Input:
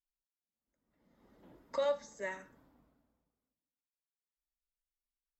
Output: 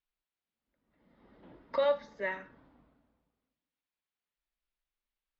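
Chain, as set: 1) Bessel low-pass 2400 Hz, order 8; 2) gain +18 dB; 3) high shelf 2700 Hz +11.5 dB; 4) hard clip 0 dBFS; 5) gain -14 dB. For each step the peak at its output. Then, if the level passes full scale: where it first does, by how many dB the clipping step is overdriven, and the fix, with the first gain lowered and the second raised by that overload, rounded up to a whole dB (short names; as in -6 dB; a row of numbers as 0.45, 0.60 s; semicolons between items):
-24.0, -6.0, -5.0, -5.0, -19.0 dBFS; no overload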